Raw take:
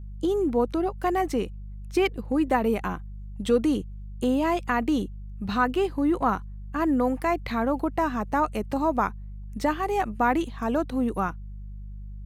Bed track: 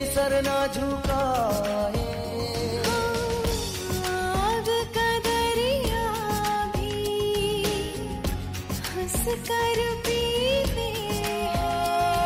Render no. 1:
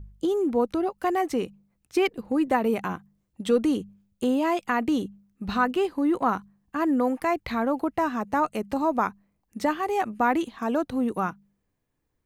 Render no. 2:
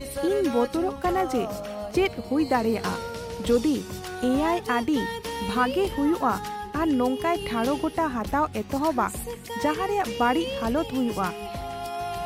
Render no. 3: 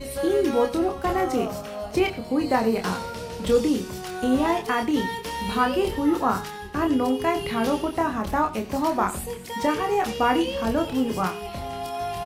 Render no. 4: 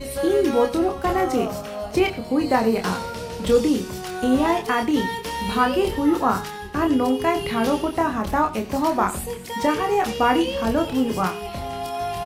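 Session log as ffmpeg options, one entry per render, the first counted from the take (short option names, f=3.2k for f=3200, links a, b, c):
-af "bandreject=f=50:t=h:w=4,bandreject=f=100:t=h:w=4,bandreject=f=150:t=h:w=4,bandreject=f=200:t=h:w=4"
-filter_complex "[1:a]volume=-8dB[a];[0:a][a]amix=inputs=2:normalize=0"
-filter_complex "[0:a]asplit=2[a][b];[b]adelay=27,volume=-5dB[c];[a][c]amix=inputs=2:normalize=0,aecho=1:1:91:0.15"
-af "volume=2.5dB"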